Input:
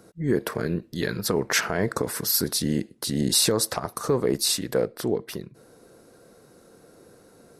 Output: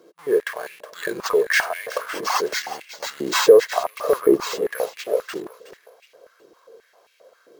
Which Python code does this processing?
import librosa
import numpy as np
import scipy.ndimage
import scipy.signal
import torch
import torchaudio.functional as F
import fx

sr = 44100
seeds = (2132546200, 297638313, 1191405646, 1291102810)

p1 = x + 0.56 * np.pad(x, (int(1.8 * sr / 1000.0), 0))[:len(x)]
p2 = fx.schmitt(p1, sr, flips_db=-36.0)
p3 = p1 + (p2 * librosa.db_to_amplitude(-11.0))
p4 = fx.tilt_shelf(p3, sr, db=7.0, hz=1400.0, at=(3.46, 4.92))
p5 = p4 + fx.echo_feedback(p4, sr, ms=368, feedback_pct=34, wet_db=-13, dry=0)
p6 = np.repeat(p5[::4], 4)[:len(p5)]
p7 = fx.filter_held_highpass(p6, sr, hz=7.5, low_hz=330.0, high_hz=2400.0)
y = p7 * librosa.db_to_amplitude(-4.5)